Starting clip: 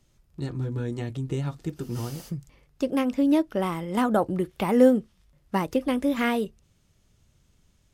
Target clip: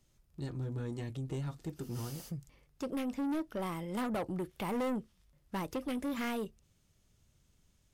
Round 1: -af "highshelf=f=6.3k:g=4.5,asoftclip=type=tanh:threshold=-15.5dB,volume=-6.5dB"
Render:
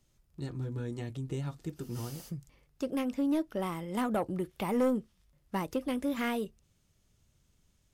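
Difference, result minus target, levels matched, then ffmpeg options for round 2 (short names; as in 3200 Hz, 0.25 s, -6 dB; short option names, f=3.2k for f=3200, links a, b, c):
soft clip: distortion -7 dB
-af "highshelf=f=6.3k:g=4.5,asoftclip=type=tanh:threshold=-24.5dB,volume=-6.5dB"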